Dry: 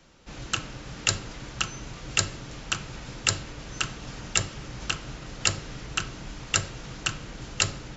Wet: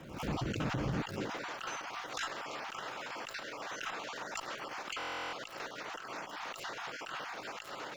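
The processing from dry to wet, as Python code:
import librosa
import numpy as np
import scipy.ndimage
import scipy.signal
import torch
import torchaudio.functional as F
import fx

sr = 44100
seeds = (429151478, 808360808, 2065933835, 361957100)

y = fx.spec_dropout(x, sr, seeds[0], share_pct=21)
y = fx.lowpass(y, sr, hz=1100.0, slope=6)
y = fx.over_compress(y, sr, threshold_db=-40.0, ratio=-0.5)
y = fx.filter_sweep_highpass(y, sr, from_hz=82.0, to_hz=760.0, start_s=0.93, end_s=1.5, q=0.81)
y = fx.tube_stage(y, sr, drive_db=35.0, bias=0.3)
y = fx.dmg_crackle(y, sr, seeds[1], per_s=440.0, level_db=-61.0)
y = fx.buffer_glitch(y, sr, at_s=(4.98,), block=1024, repeats=14)
y = fx.pre_swell(y, sr, db_per_s=72.0)
y = y * librosa.db_to_amplitude(8.5)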